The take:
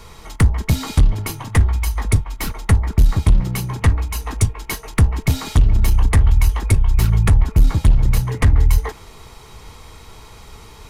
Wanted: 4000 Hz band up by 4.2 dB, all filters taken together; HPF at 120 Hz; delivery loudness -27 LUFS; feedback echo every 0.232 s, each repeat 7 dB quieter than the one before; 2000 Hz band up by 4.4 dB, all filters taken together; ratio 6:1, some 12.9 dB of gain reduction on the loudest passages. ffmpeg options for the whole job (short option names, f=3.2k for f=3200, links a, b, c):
-af "highpass=120,equalizer=f=2k:t=o:g=4,equalizer=f=4k:t=o:g=4,acompressor=threshold=-28dB:ratio=6,aecho=1:1:232|464|696|928|1160:0.447|0.201|0.0905|0.0407|0.0183,volume=5dB"